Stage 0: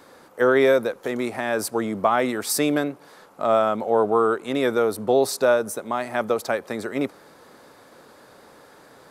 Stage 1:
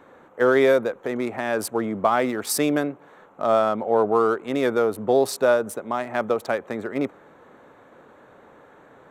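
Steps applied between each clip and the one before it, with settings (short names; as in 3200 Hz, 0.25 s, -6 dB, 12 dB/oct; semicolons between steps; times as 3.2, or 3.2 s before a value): Wiener smoothing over 9 samples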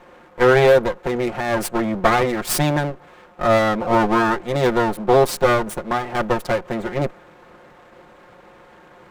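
minimum comb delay 5.6 ms; gain +5 dB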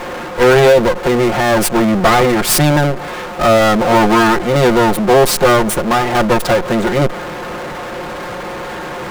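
power-law curve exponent 0.5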